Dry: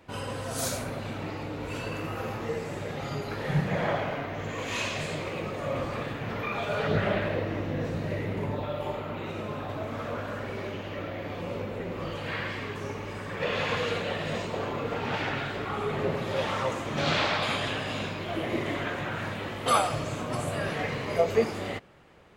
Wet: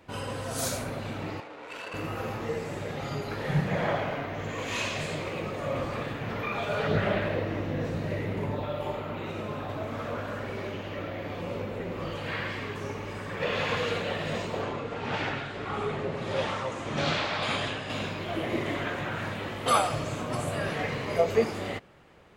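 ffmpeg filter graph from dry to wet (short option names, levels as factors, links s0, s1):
-filter_complex "[0:a]asettb=1/sr,asplit=3[s0][s1][s2];[s0]atrim=end=1.404[s3];[s1]atrim=start=1.4:end=1.94,asetpts=PTS-STARTPTS,afade=t=in:d=0.004:c=qsin,afade=t=out:st=0.536:d=0.004:c=qsin,highpass=f=570:p=1,aemphasis=mode=production:type=riaa,adynamicsmooth=sensitivity=3.5:basefreq=1400[s4];[s2]atrim=start=1.936[s5];[s3][s4]acrossfade=d=0.004:c1=hsin:c2=qsin[s6];[s6][s5]acrossfade=d=0.004:c1=qsin:c2=hsin,asettb=1/sr,asplit=3[s7][s8][s9];[s7]atrim=end=14.624[s10];[s8]atrim=start=14.62:end=17.9,asetpts=PTS-STARTPTS,afade=t=in:d=0.004:c=qsin,afade=t=out:st=3.276:d=0.004:c=qsin,lowpass=f=10000:w=0.5412,lowpass=f=10000:w=1.3066,tremolo=f=1.7:d=0.37[s11];[s9]atrim=start=17.896[s12];[s10][s11]acrossfade=d=0.004:c1=hsin:c2=qsin[s13];[s13][s12]acrossfade=d=0.004:c1=qsin:c2=hsin"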